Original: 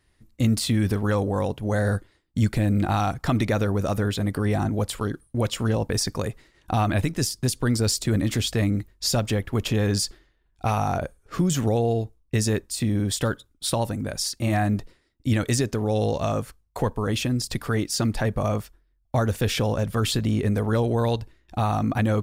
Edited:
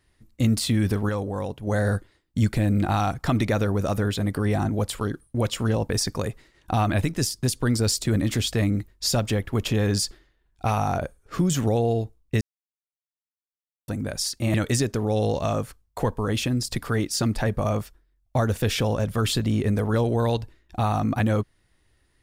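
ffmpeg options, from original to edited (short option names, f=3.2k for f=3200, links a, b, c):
-filter_complex "[0:a]asplit=6[a][b][c][d][e][f];[a]atrim=end=1.092[g];[b]atrim=start=1.088:end=1.672,asetpts=PTS-STARTPTS,volume=-4.5dB[h];[c]atrim=start=1.668:end=12.41,asetpts=PTS-STARTPTS,afade=t=out:st=10.738:d=0.004:c=hsin[i];[d]atrim=start=12.41:end=13.88,asetpts=PTS-STARTPTS,volume=0[j];[e]atrim=start=13.88:end=14.542,asetpts=PTS-STARTPTS,afade=t=in:d=0.004:c=hsin[k];[f]atrim=start=15.328[l];[g][h]acrossfade=d=0.004:c1=hsin:c2=hsin[m];[i][j][k]concat=n=3:v=0:a=1[n];[m][n]acrossfade=d=0.004:c1=hsin:c2=hsin[o];[o][l]acrossfade=d=0.004:c1=hsin:c2=hsin"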